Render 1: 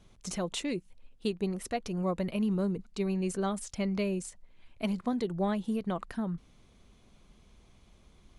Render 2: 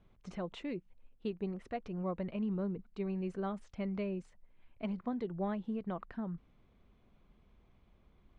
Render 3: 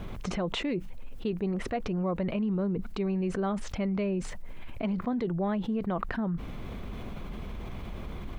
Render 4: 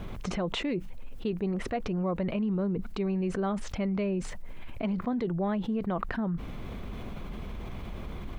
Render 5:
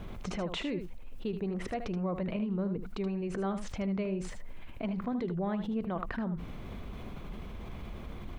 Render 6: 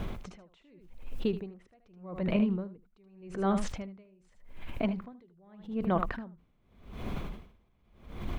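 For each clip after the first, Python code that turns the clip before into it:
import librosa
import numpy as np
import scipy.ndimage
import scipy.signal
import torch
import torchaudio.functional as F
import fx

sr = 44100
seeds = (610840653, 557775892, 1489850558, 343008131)

y1 = scipy.signal.sosfilt(scipy.signal.butter(2, 2300.0, 'lowpass', fs=sr, output='sos'), x)
y1 = F.gain(torch.from_numpy(y1), -6.0).numpy()
y2 = fx.env_flatten(y1, sr, amount_pct=70)
y2 = F.gain(torch.from_numpy(y2), 5.0).numpy()
y3 = y2
y4 = y3 + 10.0 ** (-9.5 / 20.0) * np.pad(y3, (int(77 * sr / 1000.0), 0))[:len(y3)]
y4 = F.gain(torch.from_numpy(y4), -4.0).numpy()
y5 = y4 * 10.0 ** (-36 * (0.5 - 0.5 * np.cos(2.0 * np.pi * 0.84 * np.arange(len(y4)) / sr)) / 20.0)
y5 = F.gain(torch.from_numpy(y5), 7.5).numpy()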